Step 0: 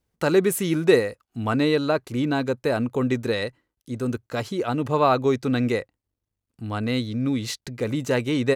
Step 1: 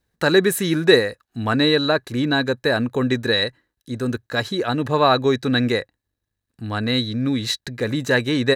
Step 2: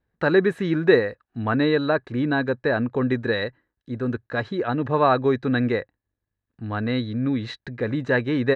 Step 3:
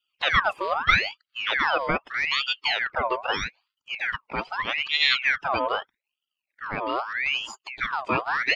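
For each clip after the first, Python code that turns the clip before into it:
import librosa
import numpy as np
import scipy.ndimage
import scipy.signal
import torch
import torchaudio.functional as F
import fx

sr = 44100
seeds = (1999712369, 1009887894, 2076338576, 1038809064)

y1 = fx.small_body(x, sr, hz=(1700.0, 3900.0), ring_ms=25, db=15)
y1 = y1 * librosa.db_to_amplitude(2.5)
y2 = scipy.signal.sosfilt(scipy.signal.butter(2, 2100.0, 'lowpass', fs=sr, output='sos'), y1)
y2 = y2 * librosa.db_to_amplitude(-2.0)
y3 = fx.spec_quant(y2, sr, step_db=30)
y3 = fx.ring_lfo(y3, sr, carrier_hz=1900.0, swing_pct=60, hz=0.8)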